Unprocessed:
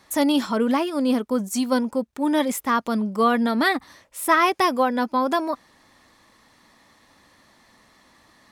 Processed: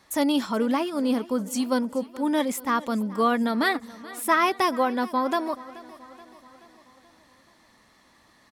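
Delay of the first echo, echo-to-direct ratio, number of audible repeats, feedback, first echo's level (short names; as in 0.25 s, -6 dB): 0.429 s, -17.5 dB, 4, 56%, -19.0 dB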